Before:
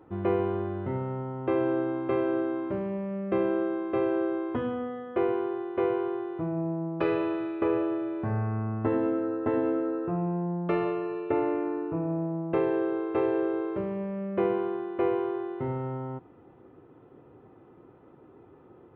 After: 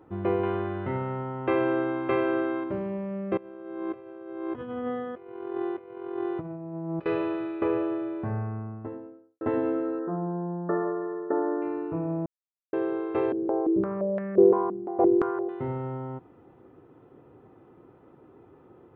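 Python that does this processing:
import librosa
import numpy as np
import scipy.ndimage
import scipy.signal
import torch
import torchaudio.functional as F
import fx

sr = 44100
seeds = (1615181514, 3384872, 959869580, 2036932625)

y = fx.peak_eq(x, sr, hz=2200.0, db=8.0, octaves=2.5, at=(0.43, 2.64))
y = fx.over_compress(y, sr, threshold_db=-34.0, ratio=-0.5, at=(3.37, 7.06))
y = fx.studio_fade_out(y, sr, start_s=7.98, length_s=1.43)
y = fx.brickwall_bandpass(y, sr, low_hz=160.0, high_hz=1900.0, at=(9.99, 11.62))
y = fx.filter_held_lowpass(y, sr, hz=5.8, low_hz=240.0, high_hz=1800.0, at=(13.32, 15.49))
y = fx.edit(y, sr, fx.silence(start_s=12.26, length_s=0.47), tone=tone)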